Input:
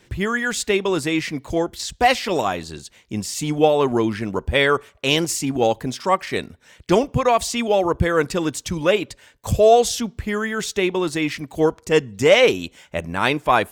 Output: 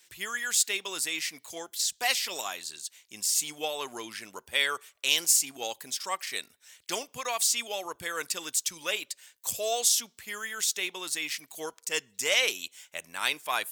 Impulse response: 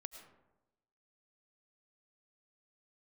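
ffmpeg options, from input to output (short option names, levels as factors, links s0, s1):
-af "aderivative,volume=1.41"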